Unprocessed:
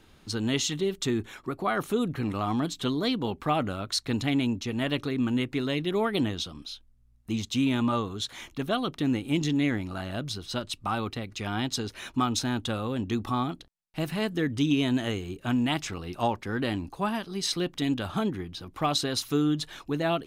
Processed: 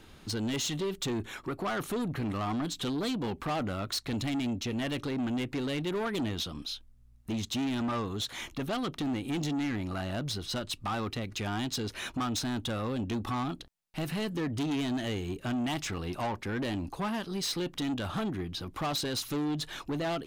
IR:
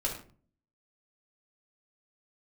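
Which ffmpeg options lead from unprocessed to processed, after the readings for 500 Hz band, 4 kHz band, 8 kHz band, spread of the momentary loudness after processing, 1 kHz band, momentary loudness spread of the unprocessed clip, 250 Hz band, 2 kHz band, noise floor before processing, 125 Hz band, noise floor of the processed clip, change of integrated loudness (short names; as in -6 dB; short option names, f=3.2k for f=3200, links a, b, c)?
-4.5 dB, -3.5 dB, -2.5 dB, 4 LU, -4.5 dB, 8 LU, -4.5 dB, -4.0 dB, -58 dBFS, -3.5 dB, -55 dBFS, -4.0 dB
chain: -filter_complex "[0:a]asplit=2[a][b];[b]acompressor=threshold=-33dB:ratio=6,volume=0dB[c];[a][c]amix=inputs=2:normalize=0,asoftclip=type=tanh:threshold=-25.5dB,volume=-2.5dB"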